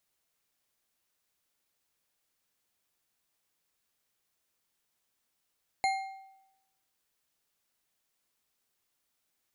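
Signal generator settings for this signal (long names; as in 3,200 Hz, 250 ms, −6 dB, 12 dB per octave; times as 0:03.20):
struck metal bar, lowest mode 773 Hz, decay 0.90 s, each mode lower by 5.5 dB, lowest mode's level −24 dB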